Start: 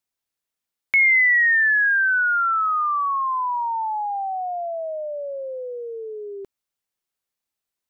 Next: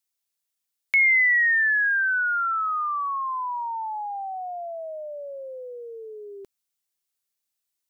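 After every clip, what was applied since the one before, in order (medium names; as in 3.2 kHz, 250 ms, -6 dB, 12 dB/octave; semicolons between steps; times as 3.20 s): treble shelf 2.8 kHz +11.5 dB; trim -6.5 dB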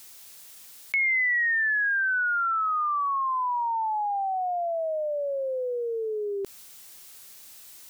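level flattener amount 70%; trim -6 dB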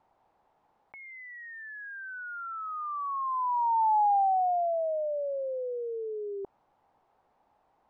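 resonant low-pass 840 Hz, resonance Q 4; trim -8 dB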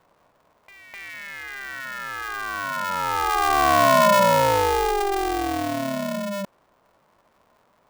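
reverse echo 255 ms -8.5 dB; polarity switched at an audio rate 200 Hz; trim +7.5 dB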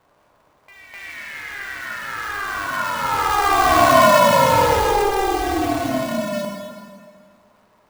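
plate-style reverb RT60 1.9 s, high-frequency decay 0.9×, DRR -1.5 dB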